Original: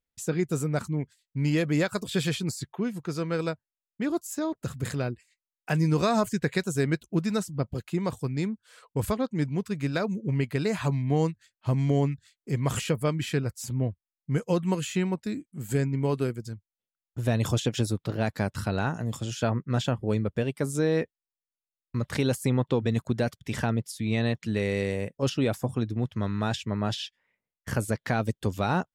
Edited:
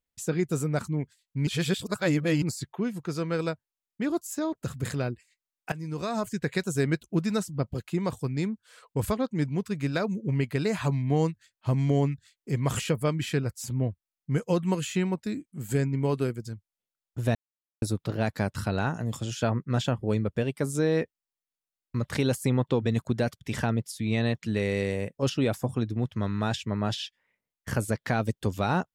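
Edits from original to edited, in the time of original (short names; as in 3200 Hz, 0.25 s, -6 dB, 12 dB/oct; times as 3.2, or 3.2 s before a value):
1.47–2.42 reverse
5.72–6.73 fade in, from -17 dB
17.35–17.82 mute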